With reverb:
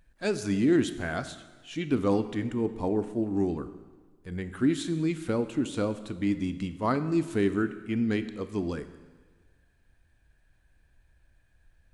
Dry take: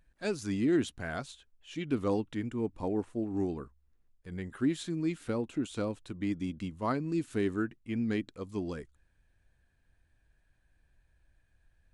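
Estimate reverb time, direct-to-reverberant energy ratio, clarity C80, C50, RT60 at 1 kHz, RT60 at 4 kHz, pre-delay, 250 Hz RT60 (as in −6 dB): 1.4 s, 11.0 dB, 14.0 dB, 12.5 dB, 1.4 s, 1.3 s, 18 ms, 1.4 s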